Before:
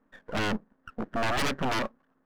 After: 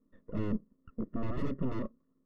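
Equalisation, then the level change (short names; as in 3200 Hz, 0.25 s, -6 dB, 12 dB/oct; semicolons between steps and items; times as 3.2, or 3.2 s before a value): running mean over 56 samples; 0.0 dB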